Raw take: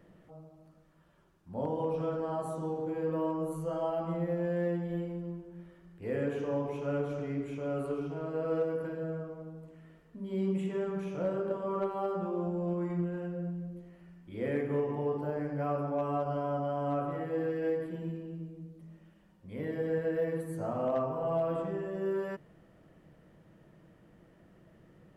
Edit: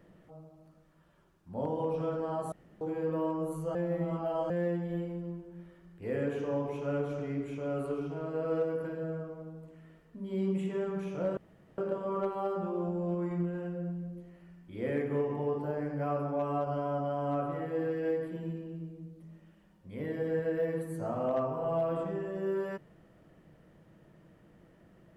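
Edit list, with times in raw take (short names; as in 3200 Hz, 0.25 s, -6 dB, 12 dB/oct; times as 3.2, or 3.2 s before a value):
2.52–2.81 room tone
3.75–4.5 reverse
11.37 insert room tone 0.41 s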